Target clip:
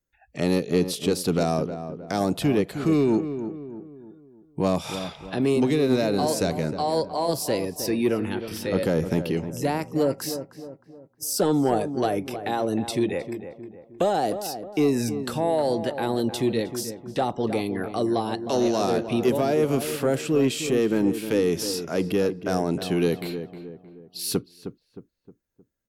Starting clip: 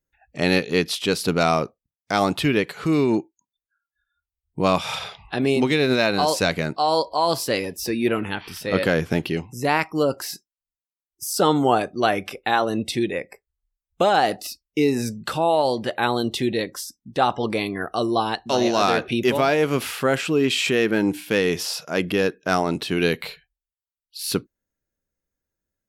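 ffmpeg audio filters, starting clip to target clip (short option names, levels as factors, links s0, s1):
-filter_complex "[0:a]acrossover=split=410|670|5400[s0][s1][s2][s3];[s2]acompressor=threshold=0.0158:ratio=5[s4];[s0][s1][s4][s3]amix=inputs=4:normalize=0,asoftclip=type=tanh:threshold=0.266,asplit=2[s5][s6];[s6]adelay=311,lowpass=f=1400:p=1,volume=0.335,asplit=2[s7][s8];[s8]adelay=311,lowpass=f=1400:p=1,volume=0.45,asplit=2[s9][s10];[s10]adelay=311,lowpass=f=1400:p=1,volume=0.45,asplit=2[s11][s12];[s12]adelay=311,lowpass=f=1400:p=1,volume=0.45,asplit=2[s13][s14];[s14]adelay=311,lowpass=f=1400:p=1,volume=0.45[s15];[s5][s7][s9][s11][s13][s15]amix=inputs=6:normalize=0"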